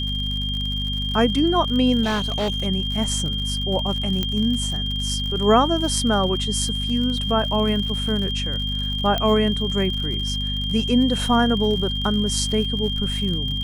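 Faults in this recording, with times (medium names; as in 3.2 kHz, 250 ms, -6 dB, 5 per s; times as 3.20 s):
crackle 69 per s -28 dBFS
hum 50 Hz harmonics 5 -27 dBFS
whine 3.2 kHz -26 dBFS
2.03–2.67 s: clipped -19 dBFS
4.23 s: pop -10 dBFS
9.18 s: pop -10 dBFS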